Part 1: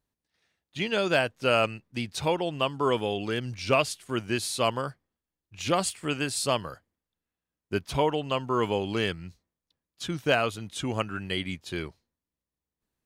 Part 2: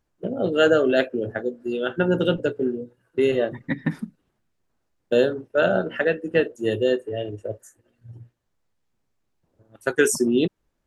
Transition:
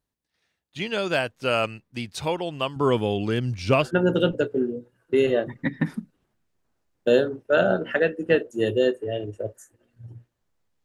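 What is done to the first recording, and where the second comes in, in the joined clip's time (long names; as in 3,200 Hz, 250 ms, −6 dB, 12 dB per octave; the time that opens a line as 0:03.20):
part 1
0:02.76–0:03.91: low-shelf EQ 390 Hz +9.5 dB
0:03.86: continue with part 2 from 0:01.91, crossfade 0.10 s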